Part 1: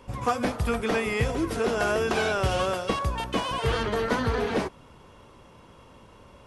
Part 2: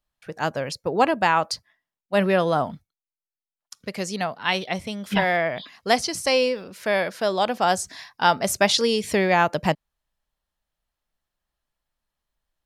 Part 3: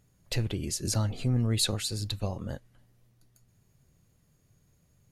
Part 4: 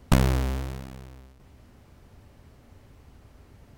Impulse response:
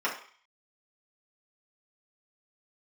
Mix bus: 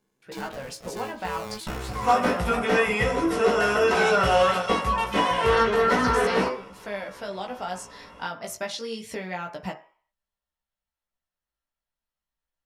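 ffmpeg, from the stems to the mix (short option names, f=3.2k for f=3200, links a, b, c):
-filter_complex "[0:a]adelay=1800,volume=1dB,asplit=2[a][b];[b]volume=-4.5dB[c];[1:a]acompressor=threshold=-23dB:ratio=3,volume=-6dB,asplit=3[d][e][f];[e]volume=-14.5dB[g];[2:a]acrossover=split=320[h][i];[i]acompressor=threshold=-28dB:ratio=6[j];[h][j]amix=inputs=2:normalize=0,aeval=exprs='val(0)*sgn(sin(2*PI*320*n/s))':c=same,volume=-6.5dB[k];[3:a]adelay=1550,volume=-10dB,asplit=2[l][m];[m]volume=-7.5dB[n];[f]apad=whole_len=234629[o];[l][o]sidechaincompress=threshold=-44dB:ratio=8:attack=16:release=210[p];[4:a]atrim=start_sample=2205[q];[c][g][n]amix=inputs=3:normalize=0[r];[r][q]afir=irnorm=-1:irlink=0[s];[a][d][k][p][s]amix=inputs=5:normalize=0,flanger=delay=15:depth=3:speed=0.29"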